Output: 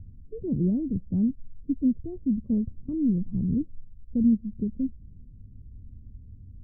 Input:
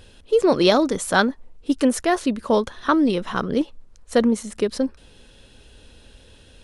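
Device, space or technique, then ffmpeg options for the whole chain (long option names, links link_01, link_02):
the neighbour's flat through the wall: -af "lowpass=frequency=210:width=0.5412,lowpass=frequency=210:width=1.3066,equalizer=frequency=100:width_type=o:width=0.65:gain=6.5,volume=4dB"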